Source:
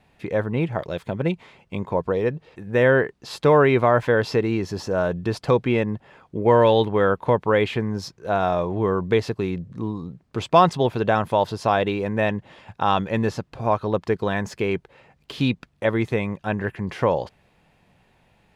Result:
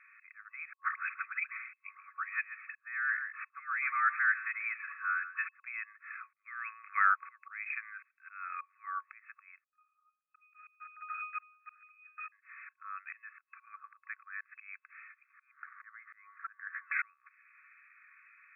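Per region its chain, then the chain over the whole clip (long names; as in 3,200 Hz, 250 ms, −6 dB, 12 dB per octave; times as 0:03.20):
0:00.73–0:05.60: all-pass dispersion highs, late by 127 ms, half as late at 600 Hz + single-tap delay 135 ms −17 dB
0:06.41–0:08.61: high-pass filter 1,300 Hz + dynamic equaliser 1,700 Hz, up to −5 dB, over −42 dBFS, Q 1.7
0:09.64–0:12.32: wrap-around overflow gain 13.5 dB + resonances in every octave D#, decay 0.37 s
0:13.75–0:14.41: linear-phase brick-wall high-pass 530 Hz + high-shelf EQ 2,300 Hz −12 dB
0:15.33–0:16.92: converter with a step at zero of −36.5 dBFS + Butterworth low-pass 1,900 Hz 48 dB per octave + downward compressor 2 to 1, threshold −34 dBFS
whole clip: downward compressor 4 to 1, threshold −27 dBFS; volume swells 606 ms; brick-wall band-pass 1,100–2,600 Hz; level +8.5 dB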